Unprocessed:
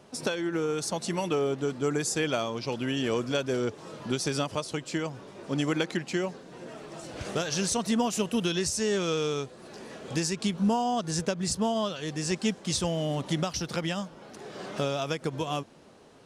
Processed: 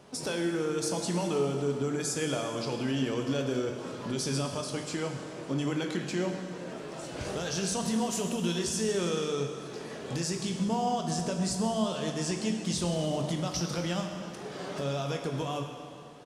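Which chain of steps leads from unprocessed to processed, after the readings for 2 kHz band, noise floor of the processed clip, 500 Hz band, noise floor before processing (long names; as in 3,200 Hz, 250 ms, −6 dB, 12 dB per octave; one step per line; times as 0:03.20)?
−4.0 dB, −42 dBFS, −2.0 dB, −50 dBFS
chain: dynamic equaliser 2,100 Hz, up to −3 dB, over −44 dBFS, Q 0.81
brickwall limiter −23.5 dBFS, peak gain reduction 7.5 dB
double-tracking delay 23 ms −13 dB
dense smooth reverb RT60 2.3 s, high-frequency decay 0.9×, DRR 3 dB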